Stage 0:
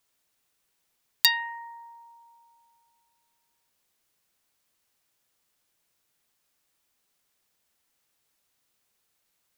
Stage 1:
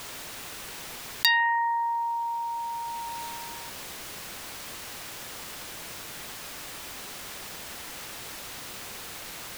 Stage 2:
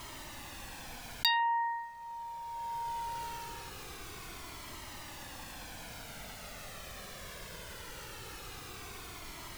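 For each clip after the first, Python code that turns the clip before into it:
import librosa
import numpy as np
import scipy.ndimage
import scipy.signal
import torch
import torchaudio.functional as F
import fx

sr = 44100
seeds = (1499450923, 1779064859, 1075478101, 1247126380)

y1 = fx.high_shelf(x, sr, hz=5200.0, db=-8.5)
y1 = fx.env_flatten(y1, sr, amount_pct=70)
y2 = fx.tilt_eq(y1, sr, slope=-1.5)
y2 = fx.comb_cascade(y2, sr, direction='falling', hz=0.21)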